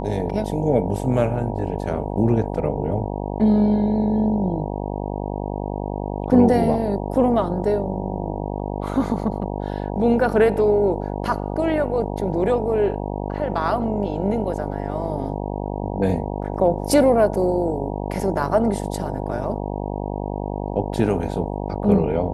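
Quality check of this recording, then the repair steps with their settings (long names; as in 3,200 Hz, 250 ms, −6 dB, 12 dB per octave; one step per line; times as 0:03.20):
mains buzz 50 Hz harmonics 19 −27 dBFS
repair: hum removal 50 Hz, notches 19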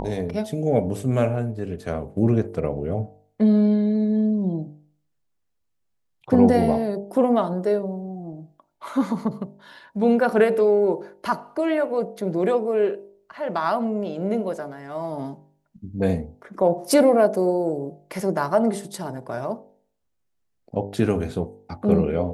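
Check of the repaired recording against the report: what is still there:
none of them is left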